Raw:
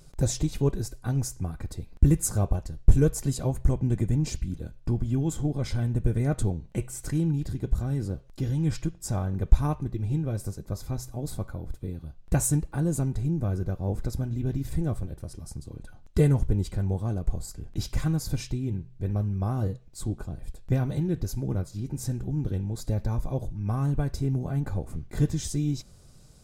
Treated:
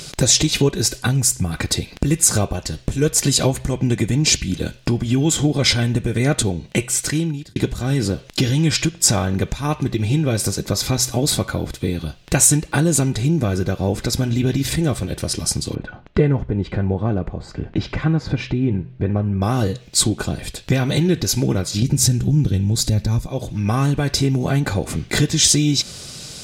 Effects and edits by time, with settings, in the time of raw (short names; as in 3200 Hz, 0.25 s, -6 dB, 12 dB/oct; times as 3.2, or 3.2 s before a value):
1.06–1.51 spectral gain 250–6900 Hz -6 dB
6.32–7.56 fade out
15.75–19.42 LPF 1500 Hz
21.82–23.27 tone controls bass +13 dB, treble +6 dB
whole clip: compressor 4:1, threshold -31 dBFS; weighting filter D; maximiser +20.5 dB; gain -1 dB